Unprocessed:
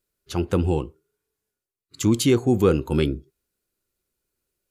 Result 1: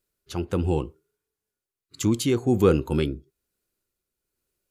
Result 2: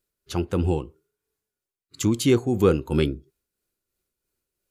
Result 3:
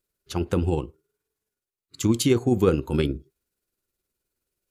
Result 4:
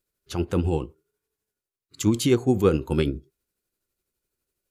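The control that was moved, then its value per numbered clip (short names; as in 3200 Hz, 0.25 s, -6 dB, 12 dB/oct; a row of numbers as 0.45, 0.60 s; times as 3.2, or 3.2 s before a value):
tremolo, rate: 1.1, 3, 19, 12 Hz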